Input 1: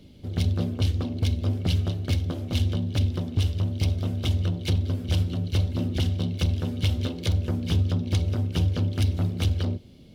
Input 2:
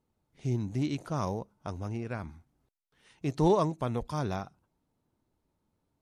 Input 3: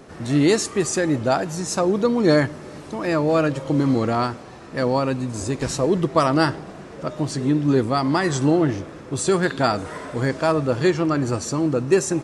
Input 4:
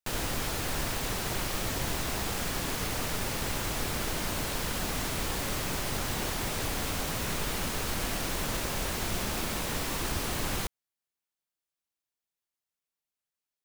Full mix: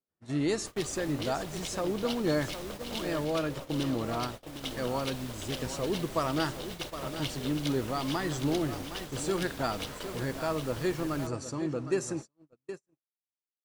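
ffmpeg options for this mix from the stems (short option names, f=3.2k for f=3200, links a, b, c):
-filter_complex "[0:a]highpass=f=470:w=0.5412,highpass=f=470:w=1.3066,aeval=exprs='val(0)+0.00355*(sin(2*PI*60*n/s)+sin(2*PI*2*60*n/s)/2+sin(2*PI*3*60*n/s)/3+sin(2*PI*4*60*n/s)/4+sin(2*PI*5*60*n/s)/5)':c=same,adelay=400,volume=-4.5dB,asplit=2[a][b];[b]volume=-8dB[c];[1:a]aeval=exprs='(tanh(50.1*val(0)+0.8)-tanh(0.8))/50.1':c=same,volume=-15dB,asplit=2[d][e];[2:a]volume=-12dB,asplit=2[f][g];[g]volume=-11dB[h];[3:a]adelay=600,volume=-13dB[i];[e]apad=whole_len=628282[j];[i][j]sidechaincompress=threshold=-51dB:ratio=5:attack=7:release=498[k];[c][h]amix=inputs=2:normalize=0,aecho=0:1:762:1[l];[a][d][f][k][l]amix=inputs=5:normalize=0,agate=range=-41dB:threshold=-39dB:ratio=16:detection=peak"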